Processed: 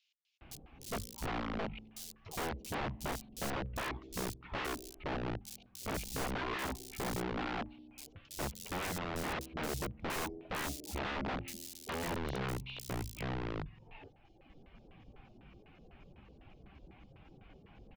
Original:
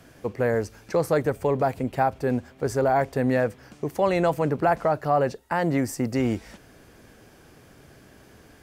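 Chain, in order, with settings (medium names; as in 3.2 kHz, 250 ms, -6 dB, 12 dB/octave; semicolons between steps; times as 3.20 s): reverb removal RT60 0.81 s; bass shelf 76 Hz +9 dB; compression 2.5:1, threshold -32 dBFS, peak gain reduction 10 dB; wide varispeed 0.48×; spring tank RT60 1.7 s, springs 46 ms, chirp 75 ms, DRR 17 dB; LFO low-pass square 4 Hz 470–2700 Hz; integer overflow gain 26.5 dB; bands offset in time highs, lows 410 ms, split 4 kHz; trim -5.5 dB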